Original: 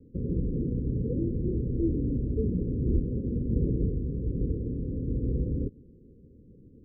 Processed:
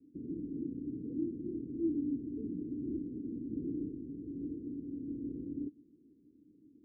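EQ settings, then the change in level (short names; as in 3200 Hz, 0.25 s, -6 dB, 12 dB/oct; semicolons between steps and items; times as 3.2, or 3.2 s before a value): vowel filter u; +1.5 dB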